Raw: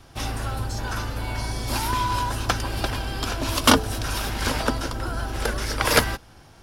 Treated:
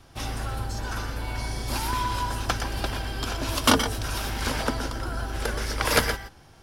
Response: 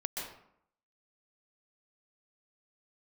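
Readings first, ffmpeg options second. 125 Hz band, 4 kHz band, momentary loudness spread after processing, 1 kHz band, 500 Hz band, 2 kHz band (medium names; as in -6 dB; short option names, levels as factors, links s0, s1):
-3.0 dB, -2.5 dB, 10 LU, -3.0 dB, -3.0 dB, -2.5 dB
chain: -filter_complex "[1:a]atrim=start_sample=2205,afade=t=out:st=0.17:d=0.01,atrim=end_sample=7938[s0];[0:a][s0]afir=irnorm=-1:irlink=0,volume=0.794"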